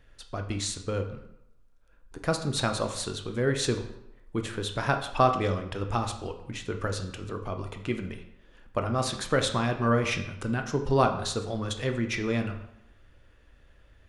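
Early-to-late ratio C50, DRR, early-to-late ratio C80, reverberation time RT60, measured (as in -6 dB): 9.5 dB, 5.5 dB, 12.0 dB, 0.80 s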